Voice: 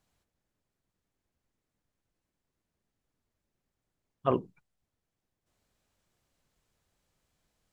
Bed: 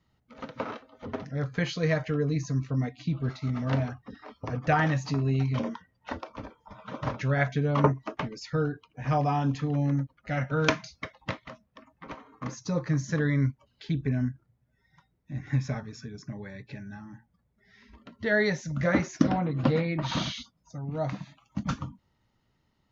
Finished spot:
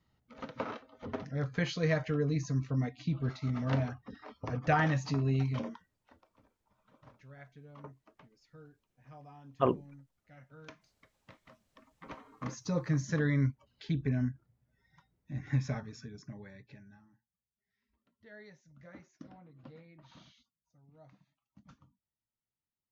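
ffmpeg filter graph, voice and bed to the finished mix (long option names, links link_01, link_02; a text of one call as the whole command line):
ffmpeg -i stem1.wav -i stem2.wav -filter_complex "[0:a]adelay=5350,volume=-0.5dB[link_01];[1:a]volume=20dB,afade=type=out:start_time=5.38:duration=0.68:silence=0.0668344,afade=type=in:start_time=11.26:duration=1.07:silence=0.0668344,afade=type=out:start_time=15.7:duration=1.52:silence=0.0595662[link_02];[link_01][link_02]amix=inputs=2:normalize=0" out.wav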